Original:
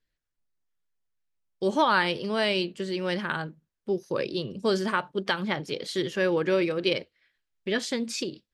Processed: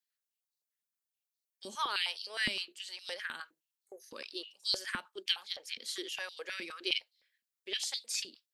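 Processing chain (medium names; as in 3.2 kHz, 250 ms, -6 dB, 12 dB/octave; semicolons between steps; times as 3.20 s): spectral replace 3.66–3.98 s, 2.3–6.3 kHz before; differentiator; step-sequenced high-pass 9.7 Hz 230–4100 Hz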